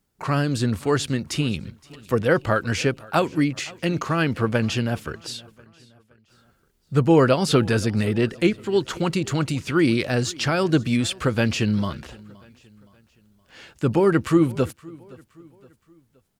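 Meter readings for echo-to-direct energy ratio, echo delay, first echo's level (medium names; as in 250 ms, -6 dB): -22.0 dB, 519 ms, -23.0 dB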